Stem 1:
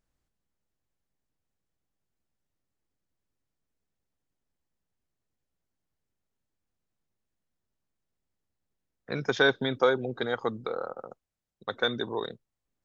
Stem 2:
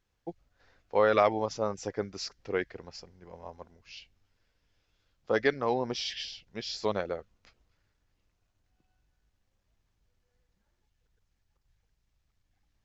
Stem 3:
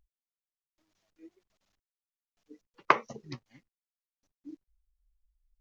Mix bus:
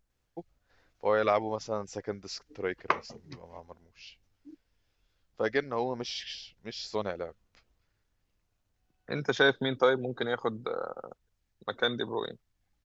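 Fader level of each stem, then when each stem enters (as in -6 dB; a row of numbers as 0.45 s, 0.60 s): -1.0 dB, -2.5 dB, -4.5 dB; 0.00 s, 0.10 s, 0.00 s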